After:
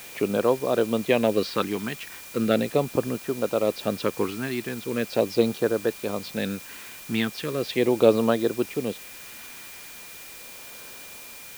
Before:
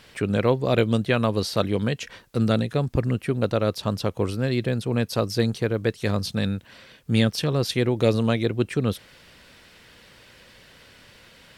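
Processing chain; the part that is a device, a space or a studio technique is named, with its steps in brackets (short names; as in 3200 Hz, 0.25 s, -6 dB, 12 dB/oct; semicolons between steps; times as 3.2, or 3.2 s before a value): shortwave radio (BPF 280–2900 Hz; tremolo 0.74 Hz, depth 47%; LFO notch sine 0.39 Hz 510–2300 Hz; whine 2400 Hz -53 dBFS; white noise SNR 17 dB); gain +5 dB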